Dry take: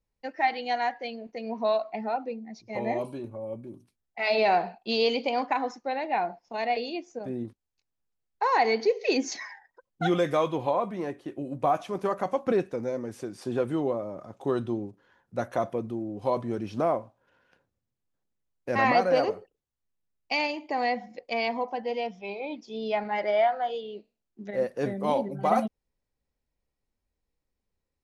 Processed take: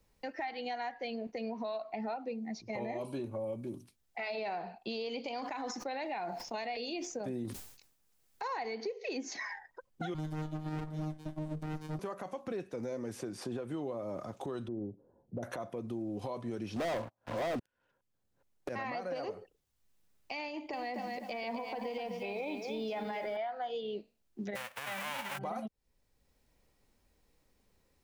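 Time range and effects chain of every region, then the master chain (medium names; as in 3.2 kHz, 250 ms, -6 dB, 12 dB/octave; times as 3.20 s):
5.24–8.48 s: treble shelf 3.5 kHz +11.5 dB + decay stretcher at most 90 dB/s
10.14–11.99 s: high-order bell 2.3 kHz -14 dB 1 oct + robot voice 154 Hz + sliding maximum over 65 samples
14.68–15.43 s: inverse Chebyshev low-pass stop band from 3.6 kHz, stop band 80 dB + compression 2.5:1, threshold -35 dBFS
16.76–18.69 s: chunks repeated in reverse 417 ms, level -4 dB + waveshaping leveller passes 5
20.48–23.37 s: compression, threshold -31 dBFS + bit-crushed delay 252 ms, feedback 35%, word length 10-bit, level -7 dB
24.55–25.37 s: formants flattened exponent 0.1 + high-order bell 1.3 kHz +14 dB 2.9 oct
whole clip: compression 6:1, threshold -35 dBFS; peak limiter -31 dBFS; three bands compressed up and down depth 40%; trim +1.5 dB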